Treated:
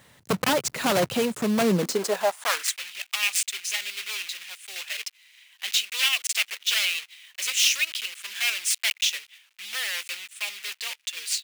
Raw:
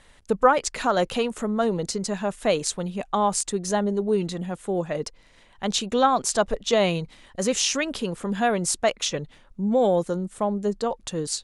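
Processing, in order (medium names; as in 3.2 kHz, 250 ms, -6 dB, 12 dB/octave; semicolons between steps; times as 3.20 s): block-companded coder 3-bit; wavefolder -18 dBFS; high-pass sweep 120 Hz -> 2.5 kHz, 1.57–2.79 s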